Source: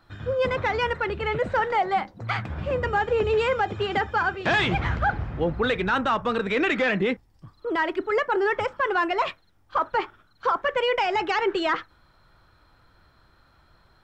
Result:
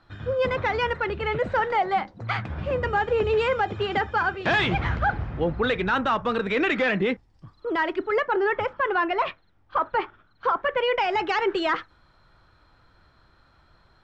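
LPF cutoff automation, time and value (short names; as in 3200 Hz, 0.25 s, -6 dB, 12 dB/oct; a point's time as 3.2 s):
7.87 s 6200 Hz
8.48 s 3400 Hz
10.72 s 3400 Hz
11.37 s 7100 Hz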